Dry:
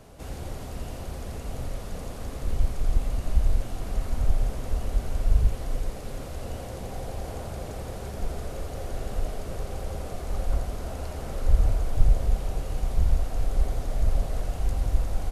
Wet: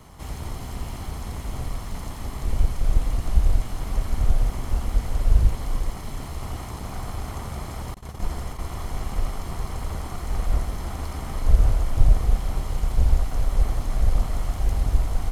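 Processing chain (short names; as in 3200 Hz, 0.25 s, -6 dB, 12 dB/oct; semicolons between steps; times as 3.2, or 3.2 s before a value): minimum comb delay 0.96 ms; 7.94–8.66 gate -34 dBFS, range -32 dB; gain +4 dB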